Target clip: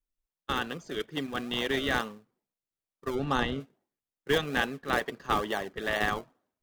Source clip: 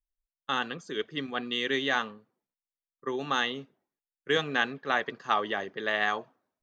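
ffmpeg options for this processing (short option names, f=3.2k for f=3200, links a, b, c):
-filter_complex "[0:a]asplit=2[a][b];[b]acrusher=samples=34:mix=1:aa=0.000001:lfo=1:lforange=34:lforate=2.3,volume=-6dB[c];[a][c]amix=inputs=2:normalize=0,asplit=3[d][e][f];[d]afade=t=out:st=3.14:d=0.02[g];[e]aemphasis=mode=reproduction:type=bsi,afade=t=in:st=3.14:d=0.02,afade=t=out:st=3.59:d=0.02[h];[f]afade=t=in:st=3.59:d=0.02[i];[g][h][i]amix=inputs=3:normalize=0,volume=-2dB"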